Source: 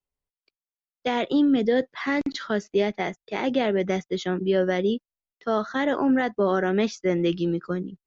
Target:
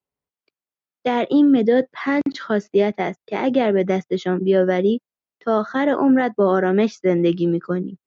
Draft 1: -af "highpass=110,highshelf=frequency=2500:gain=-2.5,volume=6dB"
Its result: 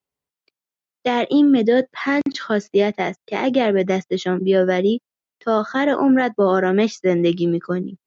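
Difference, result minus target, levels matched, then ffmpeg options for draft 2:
4,000 Hz band +4.5 dB
-af "highpass=110,highshelf=frequency=2500:gain=-10,volume=6dB"

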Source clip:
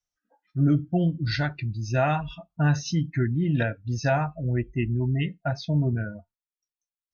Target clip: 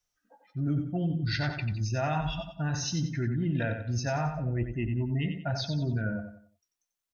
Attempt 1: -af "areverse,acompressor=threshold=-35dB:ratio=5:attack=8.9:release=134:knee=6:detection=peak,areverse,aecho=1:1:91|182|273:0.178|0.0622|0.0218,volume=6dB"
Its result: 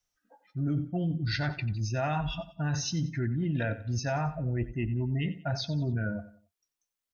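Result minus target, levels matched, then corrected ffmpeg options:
echo-to-direct −7.5 dB
-af "areverse,acompressor=threshold=-35dB:ratio=5:attack=8.9:release=134:knee=6:detection=peak,areverse,aecho=1:1:91|182|273|364:0.422|0.148|0.0517|0.0181,volume=6dB"

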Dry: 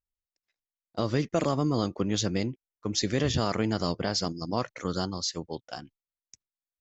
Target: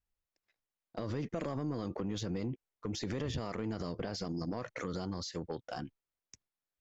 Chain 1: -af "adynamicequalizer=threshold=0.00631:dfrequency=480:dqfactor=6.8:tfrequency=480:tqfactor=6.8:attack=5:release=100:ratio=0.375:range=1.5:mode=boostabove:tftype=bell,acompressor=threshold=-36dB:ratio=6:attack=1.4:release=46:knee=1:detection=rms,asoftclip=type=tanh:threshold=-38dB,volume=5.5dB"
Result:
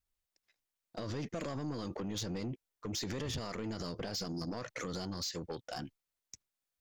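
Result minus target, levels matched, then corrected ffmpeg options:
8,000 Hz band +6.0 dB; soft clipping: distortion +9 dB
-af "adynamicequalizer=threshold=0.00631:dfrequency=480:dqfactor=6.8:tfrequency=480:tqfactor=6.8:attack=5:release=100:ratio=0.375:range=1.5:mode=boostabove:tftype=bell,acompressor=threshold=-36dB:ratio=6:attack=1.4:release=46:knee=1:detection=rms,highshelf=frequency=3300:gain=-10.5,asoftclip=type=tanh:threshold=-31.5dB,volume=5.5dB"

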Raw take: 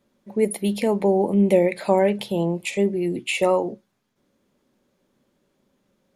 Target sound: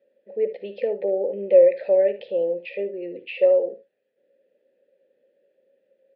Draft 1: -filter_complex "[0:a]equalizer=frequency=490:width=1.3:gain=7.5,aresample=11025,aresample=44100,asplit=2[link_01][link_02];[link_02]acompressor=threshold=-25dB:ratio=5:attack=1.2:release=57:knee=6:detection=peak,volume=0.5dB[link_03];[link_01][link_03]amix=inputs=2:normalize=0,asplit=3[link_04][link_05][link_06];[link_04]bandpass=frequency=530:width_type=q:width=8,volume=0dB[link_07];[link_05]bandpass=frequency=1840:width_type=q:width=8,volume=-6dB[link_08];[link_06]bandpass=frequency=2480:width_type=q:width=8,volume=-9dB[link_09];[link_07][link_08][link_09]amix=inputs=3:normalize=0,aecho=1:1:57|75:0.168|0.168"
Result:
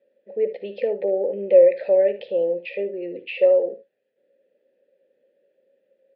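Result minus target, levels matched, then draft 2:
downward compressor: peak gain reduction −9 dB
-filter_complex "[0:a]equalizer=frequency=490:width=1.3:gain=7.5,aresample=11025,aresample=44100,asplit=2[link_01][link_02];[link_02]acompressor=threshold=-36dB:ratio=5:attack=1.2:release=57:knee=6:detection=peak,volume=0.5dB[link_03];[link_01][link_03]amix=inputs=2:normalize=0,asplit=3[link_04][link_05][link_06];[link_04]bandpass=frequency=530:width_type=q:width=8,volume=0dB[link_07];[link_05]bandpass=frequency=1840:width_type=q:width=8,volume=-6dB[link_08];[link_06]bandpass=frequency=2480:width_type=q:width=8,volume=-9dB[link_09];[link_07][link_08][link_09]amix=inputs=3:normalize=0,aecho=1:1:57|75:0.168|0.168"

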